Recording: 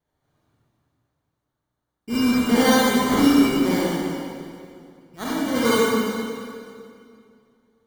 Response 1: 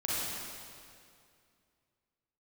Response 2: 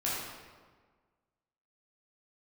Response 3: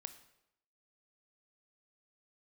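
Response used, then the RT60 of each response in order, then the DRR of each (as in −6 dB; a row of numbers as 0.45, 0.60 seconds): 1; 2.3, 1.5, 0.80 seconds; −8.0, −8.0, 10.0 decibels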